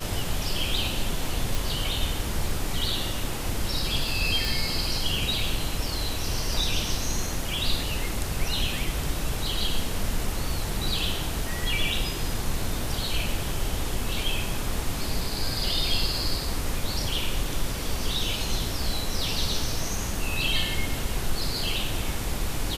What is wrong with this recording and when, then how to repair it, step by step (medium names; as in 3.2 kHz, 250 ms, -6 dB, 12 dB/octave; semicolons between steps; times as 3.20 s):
1.55 s: pop
4.45 s: pop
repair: de-click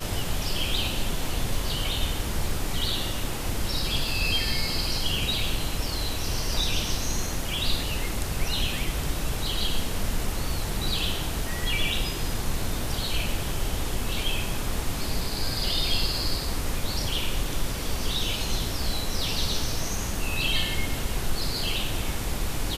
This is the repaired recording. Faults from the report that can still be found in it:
nothing left